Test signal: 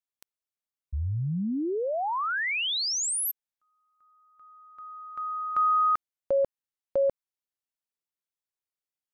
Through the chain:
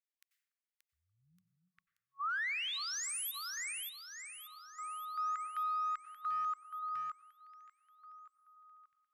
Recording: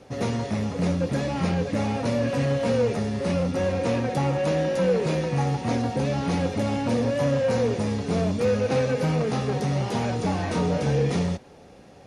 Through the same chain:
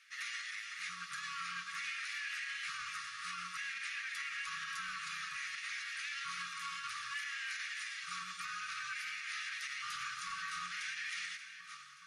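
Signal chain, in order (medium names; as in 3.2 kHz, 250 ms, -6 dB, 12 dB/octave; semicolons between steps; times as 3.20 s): on a send: echo whose repeats swap between lows and highs 290 ms, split 870 Hz, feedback 72%, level -8 dB; on the sum: LFO high-pass square 0.56 Hz 900–1900 Hz; plate-style reverb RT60 0.73 s, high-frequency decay 0.75×, pre-delay 80 ms, DRR 14 dB; in parallel at -9.5 dB: one-sided clip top -27 dBFS; on the sum: FFT band-reject 190–1100 Hz; bass shelf 150 Hz -8.5 dB; peak limiter -26.5 dBFS; upward expansion 1.5:1, over -42 dBFS; trim -5 dB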